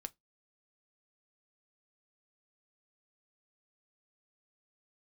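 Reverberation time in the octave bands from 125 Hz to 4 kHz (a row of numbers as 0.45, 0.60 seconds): 0.20, 0.20, 0.20, 0.15, 0.15, 0.15 seconds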